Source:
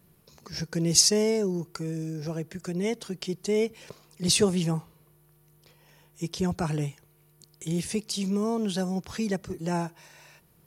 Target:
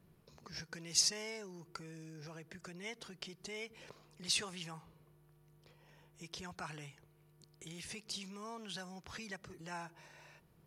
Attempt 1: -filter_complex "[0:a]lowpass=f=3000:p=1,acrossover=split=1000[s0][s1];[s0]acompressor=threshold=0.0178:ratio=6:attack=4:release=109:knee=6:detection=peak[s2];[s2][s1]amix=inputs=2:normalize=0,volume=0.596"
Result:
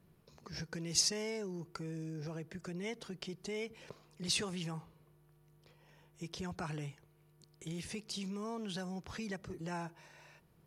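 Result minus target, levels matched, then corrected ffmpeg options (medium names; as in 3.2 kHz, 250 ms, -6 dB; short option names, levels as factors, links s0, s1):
compression: peak gain reduction -9 dB
-filter_complex "[0:a]lowpass=f=3000:p=1,acrossover=split=1000[s0][s1];[s0]acompressor=threshold=0.00501:ratio=6:attack=4:release=109:knee=6:detection=peak[s2];[s2][s1]amix=inputs=2:normalize=0,volume=0.596"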